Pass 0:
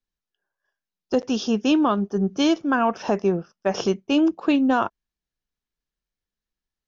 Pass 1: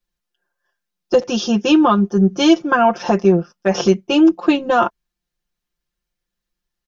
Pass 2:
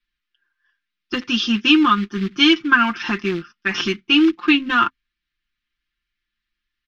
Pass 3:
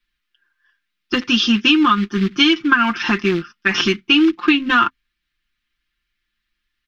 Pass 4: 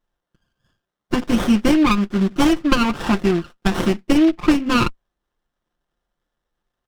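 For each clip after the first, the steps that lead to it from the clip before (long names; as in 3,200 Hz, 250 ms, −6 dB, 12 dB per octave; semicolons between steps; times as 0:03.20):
comb filter 5.7 ms, depth 95%; level +4 dB
in parallel at −5 dB: floating-point word with a short mantissa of 2 bits; on the sum: drawn EQ curve 120 Hz 0 dB, 180 Hz −11 dB, 260 Hz +6 dB, 590 Hz −26 dB, 1,200 Hz +4 dB, 2,100 Hz +11 dB, 3,400 Hz +8 dB, 5,400 Hz −2 dB, 9,100 Hz −20 dB; level −5.5 dB
downward compressor, threshold −15 dBFS, peak gain reduction 7.5 dB; level +5 dB
windowed peak hold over 17 samples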